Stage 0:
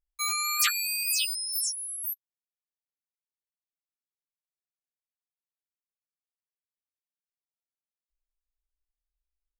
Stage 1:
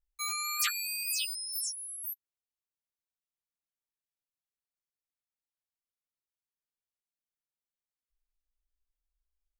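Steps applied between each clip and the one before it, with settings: bass shelf 110 Hz +9 dB; trim -5.5 dB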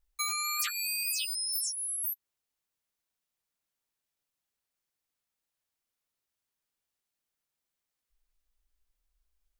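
compression, threshold -37 dBFS, peak gain reduction 11.5 dB; trim +7.5 dB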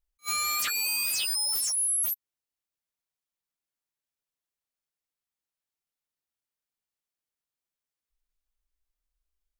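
waveshaping leveller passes 3; peak limiter -24 dBFS, peak gain reduction 5.5 dB; attacks held to a fixed rise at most 500 dB/s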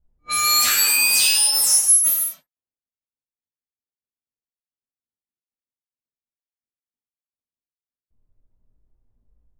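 companding laws mixed up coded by mu; gated-style reverb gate 340 ms falling, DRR -7 dB; level-controlled noise filter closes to 380 Hz, open at -20 dBFS; trim +2.5 dB

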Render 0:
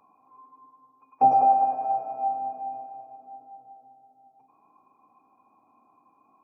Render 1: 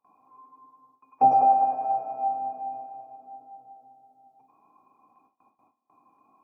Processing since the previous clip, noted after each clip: gate with hold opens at -53 dBFS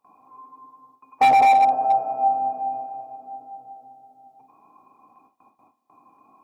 hard clipper -19 dBFS, distortion -10 dB; trim +7 dB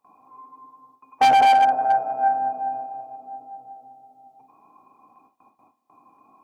self-modulated delay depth 0.051 ms

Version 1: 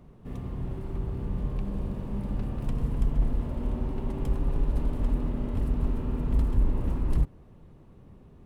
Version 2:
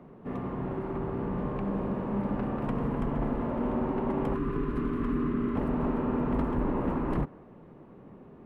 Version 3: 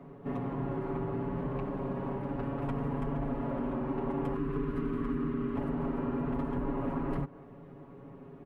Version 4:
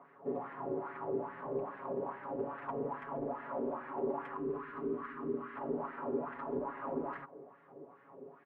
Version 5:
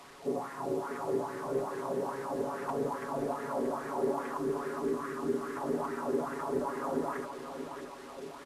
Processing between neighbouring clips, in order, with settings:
dynamic bell 1.2 kHz, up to +4 dB, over -54 dBFS, Q 0.82; time-frequency box 4.35–5.56 s, 470–990 Hz -15 dB; three-band isolator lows -19 dB, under 170 Hz, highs -19 dB, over 2.4 kHz; trim +7.5 dB
compression 3:1, threshold -32 dBFS, peak gain reduction 6.5 dB; comb 7.2 ms, depth 90%; trim -1.5 dB
wah-wah 2.4 Hz 420–1800 Hz, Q 3.1; trim +6 dB
one-bit delta coder 64 kbps, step -50.5 dBFS; feedback delay 630 ms, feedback 54%, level -9 dB; trim +4 dB; SBC 128 kbps 32 kHz

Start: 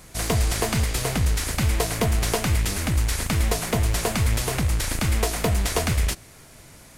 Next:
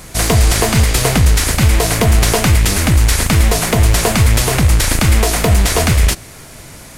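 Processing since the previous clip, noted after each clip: loudness maximiser +13 dB; trim -1 dB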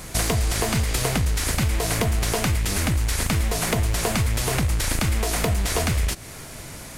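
compression 6:1, threshold -17 dBFS, peak gain reduction 10.5 dB; trim -2.5 dB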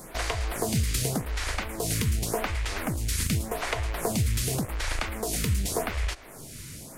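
lamp-driven phase shifter 0.87 Hz; trim -2 dB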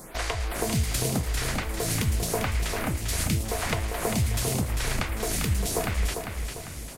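feedback delay 398 ms, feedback 43%, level -6 dB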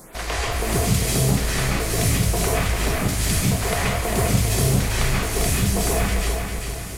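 reverberation RT60 0.60 s, pre-delay 123 ms, DRR -5.5 dB

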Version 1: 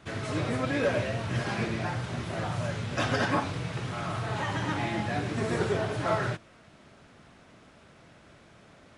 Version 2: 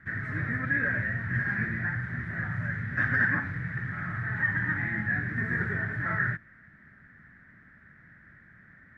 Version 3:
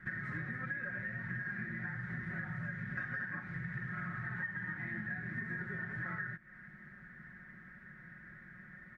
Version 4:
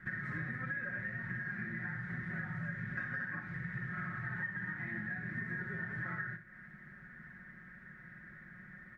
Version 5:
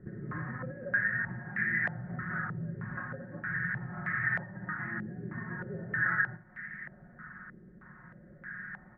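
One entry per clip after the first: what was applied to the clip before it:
FFT filter 200 Hz 0 dB, 450 Hz -15 dB, 680 Hz -16 dB, 1.1 kHz -11 dB, 1.8 kHz +14 dB, 2.7 kHz -20 dB, 7.3 kHz -26 dB
comb 5.5 ms, depth 76%; compression 12:1, threshold -36 dBFS, peak gain reduction 18 dB; trim -1 dB
flutter echo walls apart 10.5 m, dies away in 0.35 s
reverse echo 139 ms -16.5 dB; step-sequenced low-pass 3.2 Hz 430–2000 Hz; trim +2.5 dB

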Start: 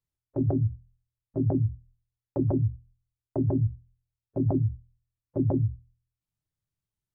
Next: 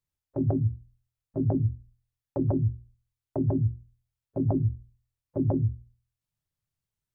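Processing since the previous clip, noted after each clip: peaking EQ 330 Hz -3 dB 0.41 oct; hum notches 60/120/180/240/300/360/420/480 Hz; trim +1 dB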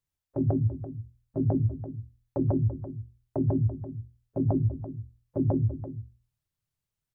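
delay 337 ms -12.5 dB

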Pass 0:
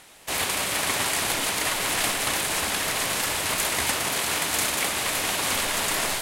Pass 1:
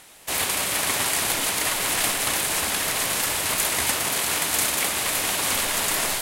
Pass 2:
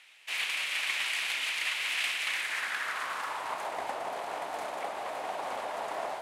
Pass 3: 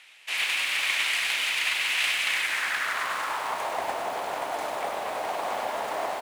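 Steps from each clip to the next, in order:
treble shelf 9 kHz +6.5 dB
band-pass sweep 2.5 kHz -> 720 Hz, 2.21–3.80 s
delay 253 ms -21.5 dB; bit-crushed delay 98 ms, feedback 35%, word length 8-bit, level -4.5 dB; trim +4.5 dB

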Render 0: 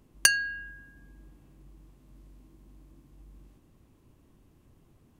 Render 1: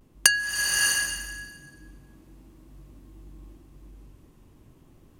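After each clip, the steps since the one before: vibrato 0.45 Hz 35 cents; swelling reverb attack 650 ms, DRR -1 dB; trim +2.5 dB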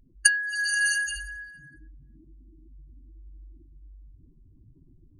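spectral contrast enhancement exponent 2.4; peaking EQ 1.2 kHz -9 dB 0.27 oct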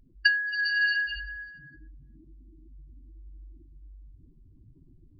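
resampled via 11.025 kHz

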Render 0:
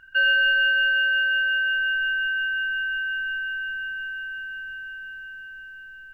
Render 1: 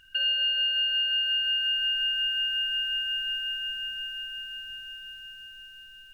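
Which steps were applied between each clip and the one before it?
FFT filter 110 Hz 0 dB, 1.5 kHz -10 dB, 2.6 kHz +9 dB; compression 12:1, threshold -25 dBFS, peak gain reduction 10.5 dB; flutter echo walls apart 8.9 m, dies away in 0.37 s; trim -1 dB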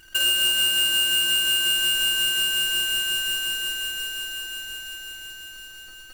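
square wave that keeps the level; peaking EQ 340 Hz +11.5 dB 0.22 oct; trim +2 dB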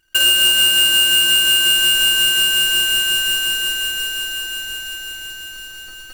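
gate with hold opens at -40 dBFS; trim +7.5 dB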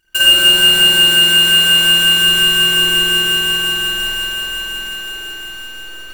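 spring tank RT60 2.2 s, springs 47 ms, chirp 75 ms, DRR -9 dB; trim -1.5 dB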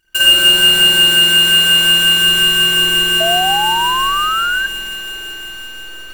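painted sound rise, 3.20–4.67 s, 650–1600 Hz -17 dBFS

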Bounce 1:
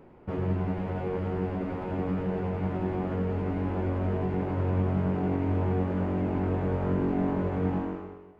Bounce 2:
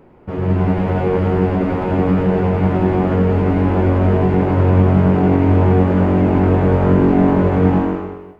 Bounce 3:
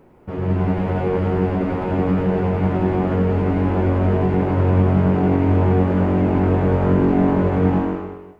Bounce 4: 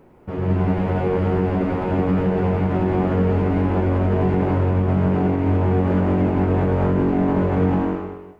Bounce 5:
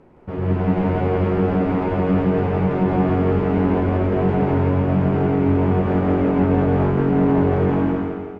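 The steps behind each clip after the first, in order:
level rider gain up to 9 dB; trim +5.5 dB
word length cut 12-bit, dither none; trim -3.5 dB
peak limiter -10.5 dBFS, peak gain reduction 5.5 dB
distance through air 64 m; feedback delay 166 ms, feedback 43%, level -4 dB

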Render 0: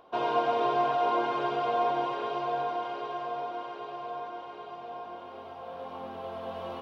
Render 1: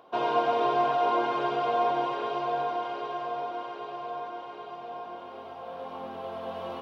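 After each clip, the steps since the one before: high-pass 96 Hz; trim +1.5 dB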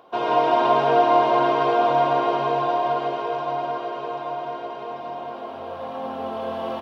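reverse bouncing-ball echo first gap 160 ms, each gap 1.1×, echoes 5; on a send at -1 dB: reverberation RT60 1.3 s, pre-delay 101 ms; on the sum: trim +3.5 dB

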